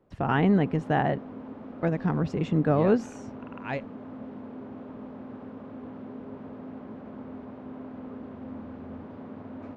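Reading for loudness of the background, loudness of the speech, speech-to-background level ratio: -41.5 LUFS, -26.5 LUFS, 15.0 dB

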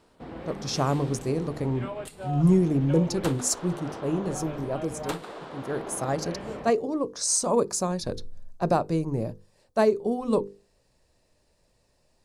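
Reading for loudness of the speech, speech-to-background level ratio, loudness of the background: -27.0 LUFS, 11.5 dB, -38.5 LUFS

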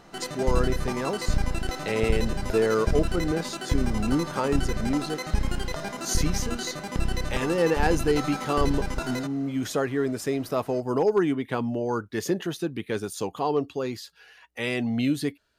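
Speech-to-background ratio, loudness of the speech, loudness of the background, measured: 3.0 dB, -28.0 LUFS, -31.0 LUFS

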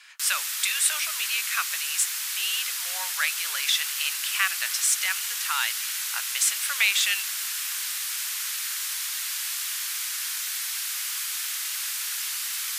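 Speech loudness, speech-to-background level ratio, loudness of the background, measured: -26.0 LUFS, 1.5 dB, -27.5 LUFS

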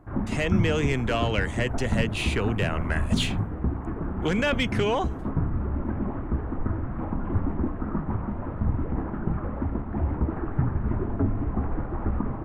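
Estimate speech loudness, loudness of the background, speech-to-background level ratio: -27.5 LUFS, -29.5 LUFS, 2.0 dB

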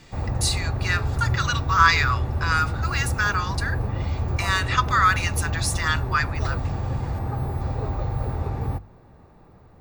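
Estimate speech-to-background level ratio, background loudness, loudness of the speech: 4.0 dB, -27.5 LUFS, -23.5 LUFS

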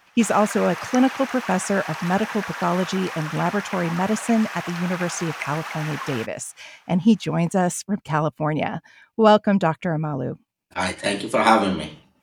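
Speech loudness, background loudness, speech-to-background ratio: -22.5 LUFS, -32.0 LUFS, 9.5 dB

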